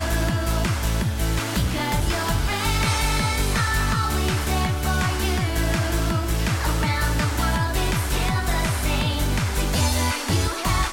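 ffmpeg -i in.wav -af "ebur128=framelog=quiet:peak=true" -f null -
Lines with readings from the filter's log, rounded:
Integrated loudness:
  I:         -22.8 LUFS
  Threshold: -32.8 LUFS
Loudness range:
  LRA:         0.7 LU
  Threshold: -42.7 LUFS
  LRA low:   -23.0 LUFS
  LRA high:  -22.2 LUFS
True peak:
  Peak:      -10.2 dBFS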